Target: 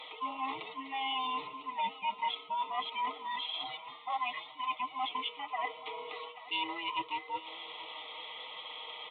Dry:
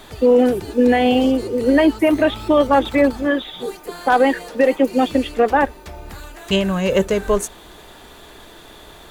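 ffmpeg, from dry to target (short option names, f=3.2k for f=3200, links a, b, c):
-af "afftfilt=real='real(if(between(b,1,1008),(2*floor((b-1)/24)+1)*24-b,b),0)':imag='imag(if(between(b,1,1008),(2*floor((b-1)/24)+1)*24-b,b),0)*if(between(b,1,1008),-1,1)':win_size=2048:overlap=0.75,highpass=1.2k,aecho=1:1:6.5:0.61,areverse,acompressor=threshold=-37dB:ratio=4,areverse,asuperstop=centerf=1600:order=12:qfactor=2.4,aecho=1:1:832:0.141,aresample=8000,aresample=44100,volume=2.5dB" -ar 48000 -c:a libopus -b:a 48k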